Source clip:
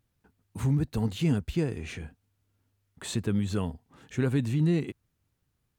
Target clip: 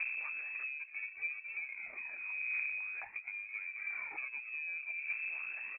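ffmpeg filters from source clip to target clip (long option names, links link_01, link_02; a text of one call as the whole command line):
ffmpeg -i in.wav -filter_complex "[0:a]aeval=exprs='val(0)+0.5*0.0178*sgn(val(0))':channel_layout=same,asplit=2[link_01][link_02];[link_02]adelay=210,highpass=300,lowpass=3400,asoftclip=type=hard:threshold=-24.5dB,volume=-8dB[link_03];[link_01][link_03]amix=inputs=2:normalize=0,asplit=3[link_04][link_05][link_06];[link_04]afade=type=out:start_time=1.67:duration=0.02[link_07];[link_05]afreqshift=92,afade=type=in:start_time=1.67:duration=0.02,afade=type=out:start_time=4.16:duration=0.02[link_08];[link_06]afade=type=in:start_time=4.16:duration=0.02[link_09];[link_07][link_08][link_09]amix=inputs=3:normalize=0,equalizer=frequency=320:width_type=o:width=0.65:gain=10,acompressor=threshold=-38dB:ratio=8,lowshelf=frequency=79:gain=-9.5,adynamicsmooth=sensitivity=7.5:basefreq=640,aphaser=in_gain=1:out_gain=1:delay=2.8:decay=0.58:speed=0.39:type=triangular,lowpass=frequency=2300:width_type=q:width=0.5098,lowpass=frequency=2300:width_type=q:width=0.6013,lowpass=frequency=2300:width_type=q:width=0.9,lowpass=frequency=2300:width_type=q:width=2.563,afreqshift=-2700" out.wav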